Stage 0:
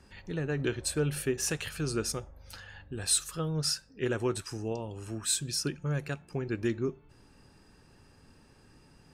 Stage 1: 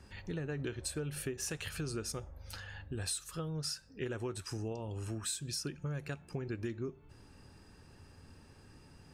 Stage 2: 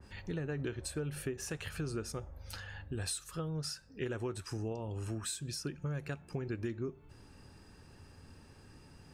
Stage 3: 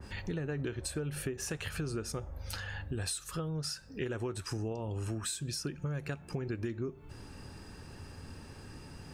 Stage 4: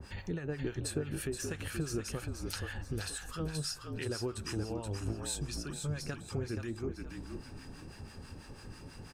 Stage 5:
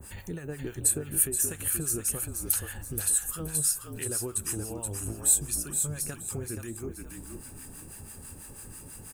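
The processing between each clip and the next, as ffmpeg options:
-af "equalizer=f=86:w=2.7:g=7,acompressor=threshold=-36dB:ratio=5"
-af "adynamicequalizer=threshold=0.00178:dfrequency=2400:dqfactor=0.7:tfrequency=2400:tqfactor=0.7:attack=5:release=100:ratio=0.375:range=3:mode=cutabove:tftype=highshelf,volume=1dB"
-af "acompressor=threshold=-46dB:ratio=2,volume=8dB"
-filter_complex "[0:a]asplit=6[a][b][c][d][e][f];[b]adelay=475,afreqshift=-46,volume=-5dB[g];[c]adelay=950,afreqshift=-92,volume=-13.6dB[h];[d]adelay=1425,afreqshift=-138,volume=-22.3dB[i];[e]adelay=1900,afreqshift=-184,volume=-30.9dB[j];[f]adelay=2375,afreqshift=-230,volume=-39.5dB[k];[a][g][h][i][j][k]amix=inputs=6:normalize=0,acrossover=split=880[l][m];[l]aeval=exprs='val(0)*(1-0.7/2+0.7/2*cos(2*PI*6.1*n/s))':c=same[n];[m]aeval=exprs='val(0)*(1-0.7/2-0.7/2*cos(2*PI*6.1*n/s))':c=same[o];[n][o]amix=inputs=2:normalize=0,volume=1.5dB"
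-af "aexciter=amount=13.7:drive=4.3:freq=7.5k"

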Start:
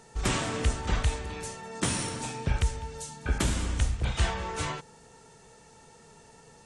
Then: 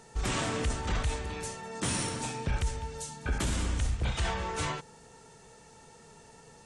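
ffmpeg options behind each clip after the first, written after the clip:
-af "alimiter=limit=-21.5dB:level=0:latency=1:release=12"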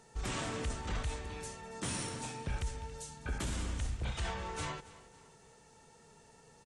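-af "aecho=1:1:277|554|831:0.126|0.0504|0.0201,volume=-6.5dB"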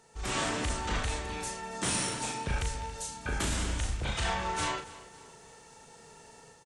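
-filter_complex "[0:a]lowshelf=f=330:g=-5.5,dynaudnorm=f=110:g=5:m=7.5dB,asplit=2[a][b];[b]adelay=37,volume=-5dB[c];[a][c]amix=inputs=2:normalize=0"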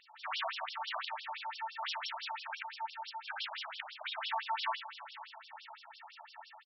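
-filter_complex "[0:a]acompressor=threshold=-49dB:ratio=1.5,asplit=6[a][b][c][d][e][f];[b]adelay=488,afreqshift=-39,volume=-16dB[g];[c]adelay=976,afreqshift=-78,volume=-21.2dB[h];[d]adelay=1464,afreqshift=-117,volume=-26.4dB[i];[e]adelay=1952,afreqshift=-156,volume=-31.6dB[j];[f]adelay=2440,afreqshift=-195,volume=-36.8dB[k];[a][g][h][i][j][k]amix=inputs=6:normalize=0,afftfilt=real='re*between(b*sr/1024,810*pow(4100/810,0.5+0.5*sin(2*PI*5.9*pts/sr))/1.41,810*pow(4100/810,0.5+0.5*sin(2*PI*5.9*pts/sr))*1.41)':imag='im*between(b*sr/1024,810*pow(4100/810,0.5+0.5*sin(2*PI*5.9*pts/sr))/1.41,810*pow(4100/810,0.5+0.5*sin(2*PI*5.9*pts/sr))*1.41)':win_size=1024:overlap=0.75,volume=9dB"

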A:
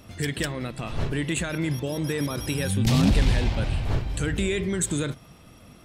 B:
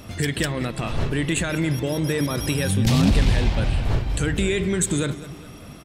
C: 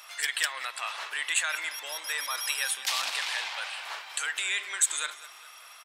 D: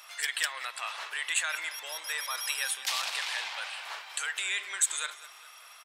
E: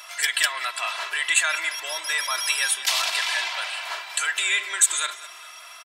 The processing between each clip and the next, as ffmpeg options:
-filter_complex "[0:a]asplit=2[a][b];[b]acompressor=threshold=-32dB:ratio=6,volume=3dB[c];[a][c]amix=inputs=2:normalize=0,asplit=2[d][e];[e]adelay=203,lowpass=f=5k:p=1,volume=-15dB,asplit=2[f][g];[g]adelay=203,lowpass=f=5k:p=1,volume=0.51,asplit=2[h][i];[i]adelay=203,lowpass=f=5k:p=1,volume=0.51,asplit=2[j][k];[k]adelay=203,lowpass=f=5k:p=1,volume=0.51,asplit=2[l][m];[m]adelay=203,lowpass=f=5k:p=1,volume=0.51[n];[d][f][h][j][l][n]amix=inputs=6:normalize=0"
-af "highpass=f=960:w=0.5412,highpass=f=960:w=1.3066"
-af "equalizer=f=280:t=o:w=0.21:g=-11.5,volume=-2dB"
-af "aecho=1:1:3:0.69,volume=7dB"

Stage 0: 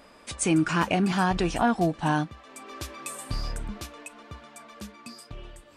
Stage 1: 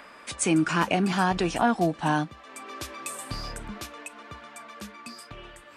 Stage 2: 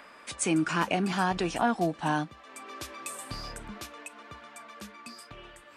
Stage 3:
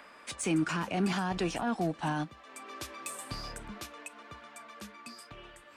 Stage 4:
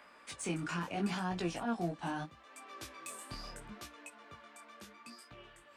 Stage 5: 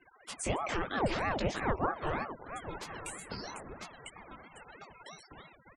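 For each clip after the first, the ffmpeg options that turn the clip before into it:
-filter_complex "[0:a]lowshelf=f=90:g=-11,acrossover=split=150|1200|2200[a][b][c][d];[c]acompressor=mode=upward:threshold=-42dB:ratio=2.5[e];[a][b][e][d]amix=inputs=4:normalize=0,volume=1dB"
-af "lowshelf=f=170:g=-3,volume=-3dB"
-filter_complex "[0:a]acrossover=split=210[a][b];[b]alimiter=level_in=0.5dB:limit=-24dB:level=0:latency=1:release=25,volume=-0.5dB[c];[a][c]amix=inputs=2:normalize=0,aeval=exprs='0.1*(cos(1*acos(clip(val(0)/0.1,-1,1)))-cos(1*PI/2))+0.00316*(cos(7*acos(clip(val(0)/0.1,-1,1)))-cos(7*PI/2))':c=same"
-af "flanger=delay=16.5:depth=7.3:speed=0.76,volume=-2.5dB"
-filter_complex "[0:a]asplit=2[a][b];[b]adelay=847,lowpass=f=1.4k:p=1,volume=-11dB,asplit=2[c][d];[d]adelay=847,lowpass=f=1.4k:p=1,volume=0.28,asplit=2[e][f];[f]adelay=847,lowpass=f=1.4k:p=1,volume=0.28[g];[a][c][e][g]amix=inputs=4:normalize=0,afftfilt=real='re*gte(hypot(re,im),0.00398)':imag='im*gte(hypot(re,im),0.00398)':win_size=1024:overlap=0.75,aeval=exprs='val(0)*sin(2*PI*580*n/s+580*0.75/3.1*sin(2*PI*3.1*n/s))':c=same,volume=6.5dB"

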